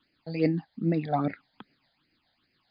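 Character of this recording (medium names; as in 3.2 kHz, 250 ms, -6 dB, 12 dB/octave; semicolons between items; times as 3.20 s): tremolo triangle 7.1 Hz, depth 50%; a quantiser's noise floor 12-bit, dither triangular; phasing stages 8, 2.5 Hz, lowest notch 330–1100 Hz; MP3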